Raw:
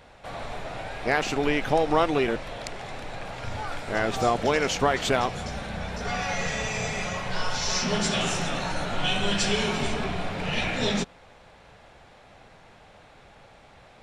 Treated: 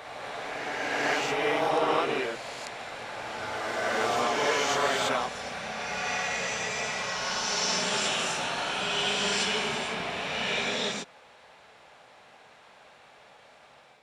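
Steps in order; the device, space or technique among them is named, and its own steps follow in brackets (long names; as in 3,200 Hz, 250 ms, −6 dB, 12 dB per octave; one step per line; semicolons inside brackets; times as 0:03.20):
ghost voice (reversed playback; convolution reverb RT60 2.6 s, pre-delay 14 ms, DRR −5.5 dB; reversed playback; high-pass filter 580 Hz 6 dB per octave)
level −6 dB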